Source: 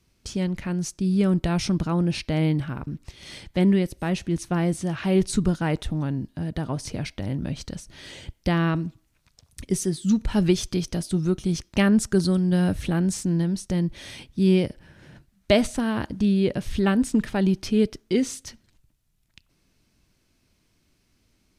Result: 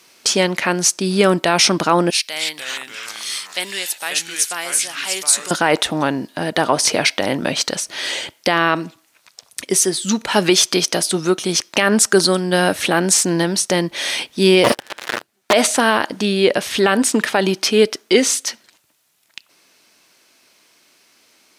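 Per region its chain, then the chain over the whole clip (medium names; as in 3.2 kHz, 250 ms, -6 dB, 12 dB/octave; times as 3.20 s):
2.10–5.51 s: high-pass 53 Hz + pre-emphasis filter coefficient 0.97 + ever faster or slower copies 258 ms, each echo -3 st, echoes 3, each echo -6 dB
14.64–15.53 s: comb filter that takes the minimum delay 8.6 ms + bass shelf 200 Hz +4.5 dB + waveshaping leveller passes 5
whole clip: high-pass 550 Hz 12 dB/octave; gain riding within 4 dB 2 s; loudness maximiser +18.5 dB; trim -1 dB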